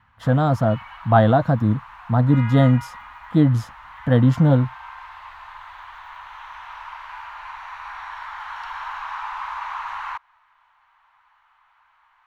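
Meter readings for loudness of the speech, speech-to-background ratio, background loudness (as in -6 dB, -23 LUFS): -19.0 LUFS, 16.5 dB, -35.5 LUFS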